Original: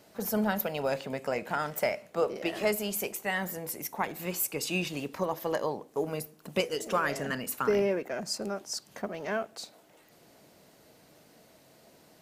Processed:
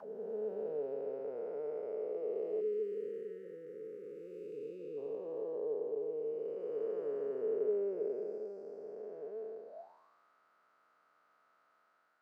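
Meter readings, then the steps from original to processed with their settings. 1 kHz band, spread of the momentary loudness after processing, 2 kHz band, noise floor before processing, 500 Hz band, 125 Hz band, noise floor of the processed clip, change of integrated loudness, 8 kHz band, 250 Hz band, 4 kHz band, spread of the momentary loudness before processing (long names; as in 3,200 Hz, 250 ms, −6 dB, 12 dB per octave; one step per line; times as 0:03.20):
−22.0 dB, 12 LU, below −30 dB, −60 dBFS, −4.0 dB, below −20 dB, −73 dBFS, −8.0 dB, below −40 dB, −14.5 dB, below −35 dB, 7 LU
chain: spectrum smeared in time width 696 ms
envelope filter 440–1,600 Hz, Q 11, down, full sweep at −41 dBFS
time-frequency box erased 0:02.61–0:04.98, 550–1,200 Hz
level +8 dB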